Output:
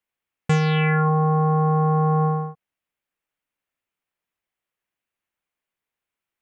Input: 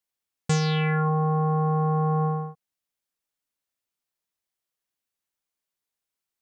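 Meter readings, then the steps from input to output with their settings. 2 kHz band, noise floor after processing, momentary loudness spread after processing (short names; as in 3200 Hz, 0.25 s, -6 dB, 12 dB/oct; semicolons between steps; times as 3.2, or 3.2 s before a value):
+6.0 dB, under -85 dBFS, 8 LU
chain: resonant high shelf 3400 Hz -8.5 dB, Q 1.5; gain +4 dB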